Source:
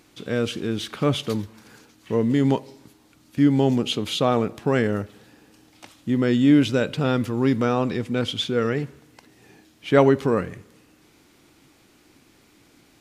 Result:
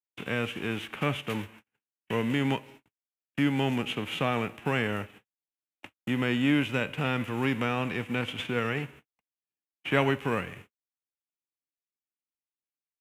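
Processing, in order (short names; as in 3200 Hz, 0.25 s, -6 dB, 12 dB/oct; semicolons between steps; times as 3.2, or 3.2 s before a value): spectral whitening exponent 0.6; gate -43 dBFS, range -58 dB; resonant high shelf 3500 Hz -9 dB, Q 3; three-band squash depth 40%; gain -8 dB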